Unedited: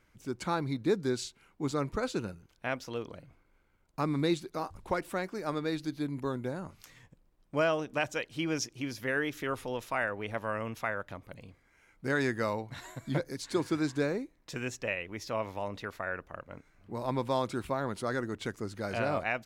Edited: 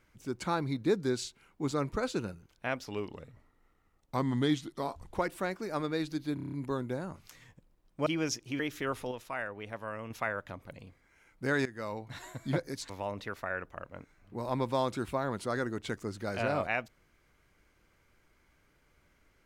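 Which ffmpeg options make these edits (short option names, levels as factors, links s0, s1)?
-filter_complex "[0:a]asplit=15[s0][s1][s2][s3][s4][s5][s6][s7][s8][s9][s10][s11][s12][s13][s14];[s0]atrim=end=2.854[s15];[s1]atrim=start=2.85:end=4.86,asetpts=PTS-STARTPTS,asetrate=38808,aresample=44100,atrim=end_sample=100728,asetpts=PTS-STARTPTS[s16];[s2]atrim=start=4.856:end=6.102[s17];[s3]atrim=start=6.068:end=6.102[s18];[s4]atrim=start=6.068:end=6.102[s19];[s5]atrim=start=6.068:end=6.102[s20];[s6]atrim=start=6.068:end=6.102[s21];[s7]atrim=start=6.068:end=6.102[s22];[s8]atrim=start=6.068:end=7.612[s23];[s9]atrim=start=8.358:end=8.892[s24];[s10]atrim=start=9.208:end=9.732[s25];[s11]atrim=start=9.728:end=10.722,asetpts=PTS-STARTPTS,volume=0.531[s26];[s12]atrim=start=10.718:end=12.27,asetpts=PTS-STARTPTS,afade=t=out:st=1.548:d=0.004:c=hsin:silence=0.141254[s27];[s13]atrim=start=12.27:end=13.512,asetpts=PTS-STARTPTS,afade=t=in:d=0.53:silence=0.141254[s28];[s14]atrim=start=15.458[s29];[s15][s16]acrossfade=d=0.004:c1=hsin:c2=hsin[s30];[s30][s17]acrossfade=d=0.004:c1=hsin:c2=hsin[s31];[s31][s18]acrossfade=d=0.004:c1=hsin:c2=hsin[s32];[s32][s19]acrossfade=d=0.004:c1=hsin:c2=hsin[s33];[s33][s20]acrossfade=d=0.004:c1=hsin:c2=hsin[s34];[s34][s21]acrossfade=d=0.004:c1=hsin:c2=hsin[s35];[s35][s22]acrossfade=d=0.004:c1=hsin:c2=hsin[s36];[s36][s23]acrossfade=d=0.004:c1=hsin:c2=hsin[s37];[s37][s24]acrossfade=d=0.004:c1=hsin:c2=hsin[s38];[s38][s25]acrossfade=d=0.004:c1=hsin:c2=hsin[s39];[s39][s26]acrossfade=d=0.004:c1=hsin:c2=hsin[s40];[s27][s28]concat=n=2:v=0:a=1[s41];[s40][s41]acrossfade=d=0.004:c1=hsin:c2=hsin[s42];[s42][s29]acrossfade=d=0.004:c1=hsin:c2=hsin"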